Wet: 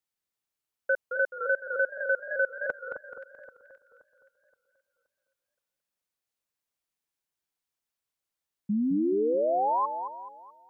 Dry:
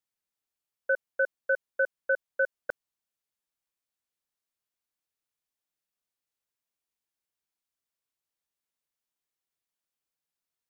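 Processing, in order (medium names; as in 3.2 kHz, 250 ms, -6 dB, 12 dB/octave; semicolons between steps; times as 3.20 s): echo whose repeats swap between lows and highs 262 ms, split 1.5 kHz, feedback 57%, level -7.5 dB; painted sound rise, 8.69–9.86 s, 200–1100 Hz -26 dBFS; modulated delay 215 ms, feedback 41%, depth 166 cents, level -8 dB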